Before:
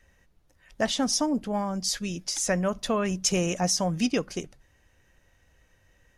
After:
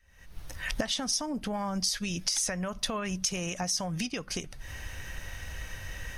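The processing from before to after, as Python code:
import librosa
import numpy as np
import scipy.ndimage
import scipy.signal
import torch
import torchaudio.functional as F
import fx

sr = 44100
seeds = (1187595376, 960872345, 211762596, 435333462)

y = fx.recorder_agc(x, sr, target_db=-13.0, rise_db_per_s=77.0, max_gain_db=30)
y = fx.peak_eq(y, sr, hz=350.0, db=-9.0, octaves=2.6)
y = fx.notch(y, sr, hz=7200.0, q=7.1)
y = y * librosa.db_to_amplitude(-5.5)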